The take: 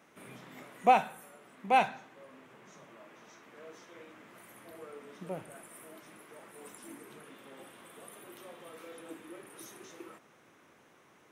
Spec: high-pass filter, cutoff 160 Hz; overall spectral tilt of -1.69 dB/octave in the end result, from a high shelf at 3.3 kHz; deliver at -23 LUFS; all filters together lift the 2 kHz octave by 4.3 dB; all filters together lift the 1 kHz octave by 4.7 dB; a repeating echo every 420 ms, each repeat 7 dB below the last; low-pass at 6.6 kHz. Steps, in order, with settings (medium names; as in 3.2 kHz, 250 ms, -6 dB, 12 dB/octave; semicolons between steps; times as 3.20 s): high-pass 160 Hz; low-pass 6.6 kHz; peaking EQ 1 kHz +6.5 dB; peaking EQ 2 kHz +7 dB; treble shelf 3.3 kHz -8.5 dB; feedback delay 420 ms, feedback 45%, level -7 dB; trim +4.5 dB